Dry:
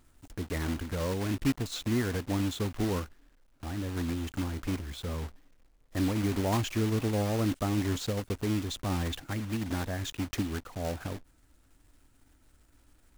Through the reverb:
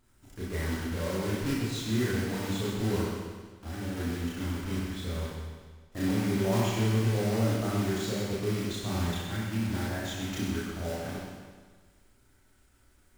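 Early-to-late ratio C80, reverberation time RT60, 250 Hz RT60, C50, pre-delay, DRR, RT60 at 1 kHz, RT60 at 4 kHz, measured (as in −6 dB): 1.0 dB, 1.5 s, 1.6 s, −2.0 dB, 26 ms, −7.5 dB, 1.5 s, 1.4 s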